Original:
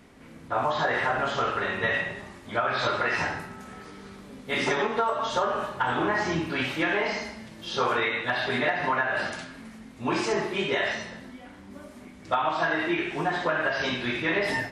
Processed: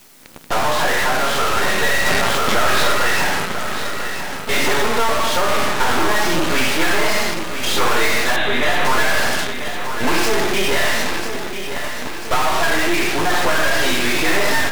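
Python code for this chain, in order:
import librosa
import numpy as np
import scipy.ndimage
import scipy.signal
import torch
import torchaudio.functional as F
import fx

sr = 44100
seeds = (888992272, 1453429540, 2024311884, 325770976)

p1 = fx.peak_eq(x, sr, hz=68.0, db=-15.0, octaves=1.7)
p2 = fx.fuzz(p1, sr, gain_db=43.0, gate_db=-42.0)
p3 = p1 + (p2 * librosa.db_to_amplitude(-6.5))
p4 = fx.quant_dither(p3, sr, seeds[0], bits=8, dither='triangular')
p5 = np.maximum(p4, 0.0)
p6 = fx.brickwall_lowpass(p5, sr, high_hz=4100.0, at=(8.36, 8.85))
p7 = fx.echo_feedback(p6, sr, ms=993, feedback_pct=57, wet_db=-9)
p8 = fx.env_flatten(p7, sr, amount_pct=70, at=(2.06, 2.93))
y = p8 * librosa.db_to_amplitude(4.0)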